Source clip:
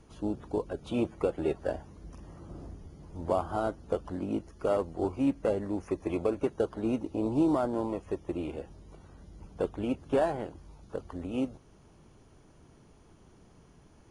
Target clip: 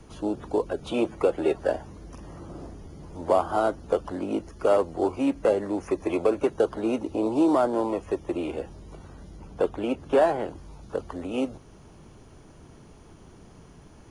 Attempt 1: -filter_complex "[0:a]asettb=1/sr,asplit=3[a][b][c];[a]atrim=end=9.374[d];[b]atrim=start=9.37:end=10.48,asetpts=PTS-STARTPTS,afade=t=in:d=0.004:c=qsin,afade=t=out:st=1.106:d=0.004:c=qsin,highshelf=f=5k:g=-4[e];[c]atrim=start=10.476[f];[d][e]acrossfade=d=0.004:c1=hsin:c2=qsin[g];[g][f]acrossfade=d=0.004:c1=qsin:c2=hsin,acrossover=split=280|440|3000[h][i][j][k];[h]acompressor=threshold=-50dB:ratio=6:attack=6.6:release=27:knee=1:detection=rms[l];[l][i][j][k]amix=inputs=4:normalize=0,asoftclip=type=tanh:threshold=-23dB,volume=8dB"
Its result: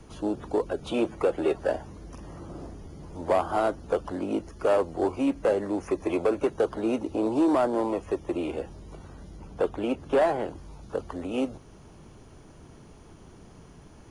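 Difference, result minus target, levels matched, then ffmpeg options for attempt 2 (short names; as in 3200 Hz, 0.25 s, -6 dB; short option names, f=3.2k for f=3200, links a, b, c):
soft clip: distortion +13 dB
-filter_complex "[0:a]asettb=1/sr,asplit=3[a][b][c];[a]atrim=end=9.374[d];[b]atrim=start=9.37:end=10.48,asetpts=PTS-STARTPTS,afade=t=in:d=0.004:c=qsin,afade=t=out:st=1.106:d=0.004:c=qsin,highshelf=f=5k:g=-4[e];[c]atrim=start=10.476[f];[d][e]acrossfade=d=0.004:c1=hsin:c2=qsin[g];[g][f]acrossfade=d=0.004:c1=qsin:c2=hsin,acrossover=split=280|440|3000[h][i][j][k];[h]acompressor=threshold=-50dB:ratio=6:attack=6.6:release=27:knee=1:detection=rms[l];[l][i][j][k]amix=inputs=4:normalize=0,asoftclip=type=tanh:threshold=-14.5dB,volume=8dB"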